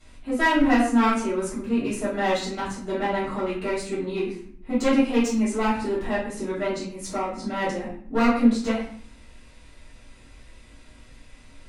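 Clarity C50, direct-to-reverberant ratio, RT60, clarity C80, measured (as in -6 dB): 4.0 dB, -11.0 dB, 0.55 s, 8.0 dB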